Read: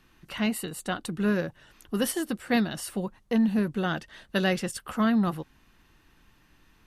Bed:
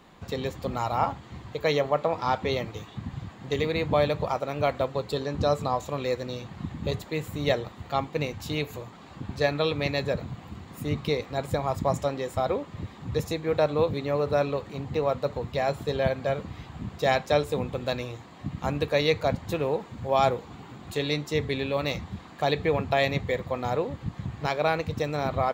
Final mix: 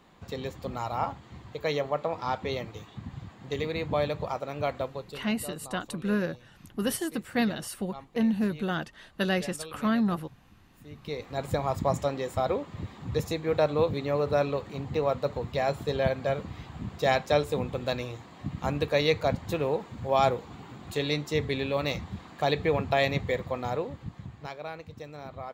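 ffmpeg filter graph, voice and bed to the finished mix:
ffmpeg -i stem1.wav -i stem2.wav -filter_complex "[0:a]adelay=4850,volume=-2dB[link_01];[1:a]volume=12dB,afade=type=out:start_time=4.78:duration=0.45:silence=0.223872,afade=type=in:start_time=10.95:duration=0.55:silence=0.149624,afade=type=out:start_time=23.35:duration=1.25:silence=0.223872[link_02];[link_01][link_02]amix=inputs=2:normalize=0" out.wav

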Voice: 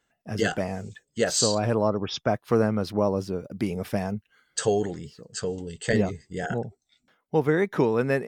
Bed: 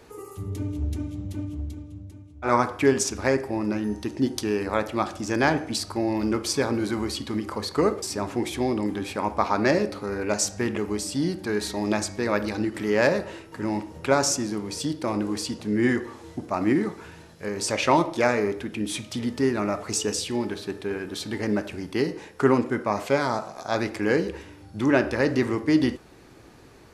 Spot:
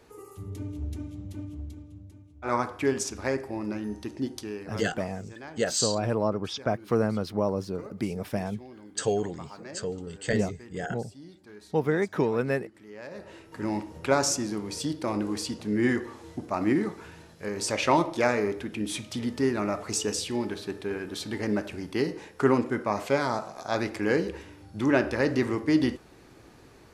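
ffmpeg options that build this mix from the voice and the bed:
ffmpeg -i stem1.wav -i stem2.wav -filter_complex "[0:a]adelay=4400,volume=-3dB[link_01];[1:a]volume=13.5dB,afade=type=out:start_time=4.1:duration=0.83:silence=0.158489,afade=type=in:start_time=13.09:duration=0.55:silence=0.105925[link_02];[link_01][link_02]amix=inputs=2:normalize=0" out.wav

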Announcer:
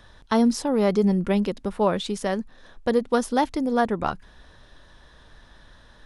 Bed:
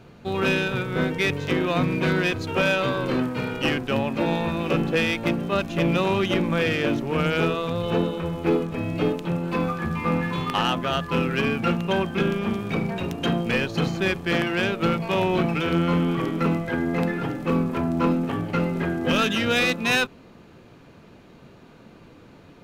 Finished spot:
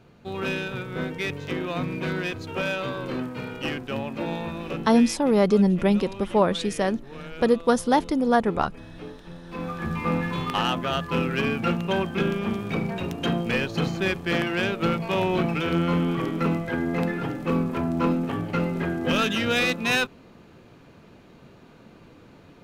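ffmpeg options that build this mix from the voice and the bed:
ffmpeg -i stem1.wav -i stem2.wav -filter_complex "[0:a]adelay=4550,volume=1.5dB[link_01];[1:a]volume=9dB,afade=type=out:start_time=4.44:duration=0.78:silence=0.298538,afade=type=in:start_time=9.45:duration=0.46:silence=0.177828[link_02];[link_01][link_02]amix=inputs=2:normalize=0" out.wav

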